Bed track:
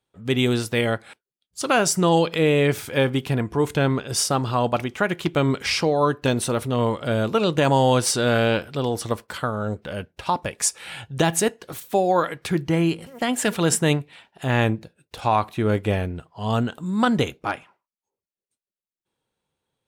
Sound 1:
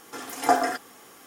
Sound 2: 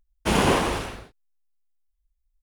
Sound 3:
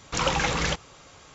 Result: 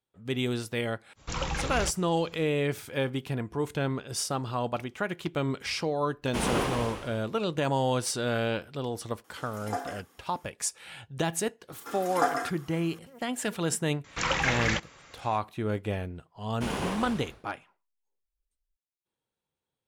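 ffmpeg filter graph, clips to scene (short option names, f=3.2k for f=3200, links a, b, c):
-filter_complex "[3:a]asplit=2[a][b];[2:a]asplit=2[c][d];[1:a]asplit=2[e][f];[0:a]volume=-9dB[g];[a]lowshelf=f=100:g=12[h];[c]aecho=1:1:130|260|390|520|650:0.316|0.136|0.0585|0.0251|0.0108[i];[f]equalizer=f=1.3k:w=2.6:g=7.5[j];[b]equalizer=f=1.9k:w=1.6:g=8.5[k];[h]atrim=end=1.34,asetpts=PTS-STARTPTS,volume=-9dB,afade=t=in:d=0.05,afade=t=out:st=1.29:d=0.05,adelay=1150[l];[i]atrim=end=2.42,asetpts=PTS-STARTPTS,volume=-8.5dB,afade=t=in:d=0.004:c=hsin,afade=t=out:st=2.416:d=0.004:c=hsin,adelay=6080[m];[e]atrim=end=1.26,asetpts=PTS-STARTPTS,volume=-13dB,afade=t=in:d=0.004:c=hsin,afade=t=out:st=1.256:d=0.004:c=hsin,adelay=9240[n];[j]atrim=end=1.26,asetpts=PTS-STARTPTS,volume=-7dB,afade=t=in:d=0.004:c=hsin,afade=t=out:st=1.256:d=0.004:c=hsin,adelay=11730[o];[k]atrim=end=1.34,asetpts=PTS-STARTPTS,volume=-5.5dB,afade=t=in:d=0.004:c=hsin,afade=t=out:st=1.336:d=0.004:c=hsin,adelay=14040[p];[d]atrim=end=2.42,asetpts=PTS-STARTPTS,volume=-12dB,afade=t=in:d=0.004:c=hsin,afade=t=out:st=2.416:d=0.004:c=hsin,adelay=16350[q];[g][l][m][n][o][p][q]amix=inputs=7:normalize=0"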